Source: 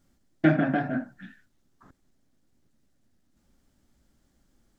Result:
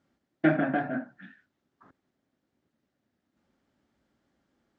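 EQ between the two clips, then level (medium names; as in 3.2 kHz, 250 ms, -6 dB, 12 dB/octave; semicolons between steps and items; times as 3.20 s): high-pass 87 Hz 12 dB/octave; distance through air 74 m; tone controls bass -7 dB, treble -8 dB; 0.0 dB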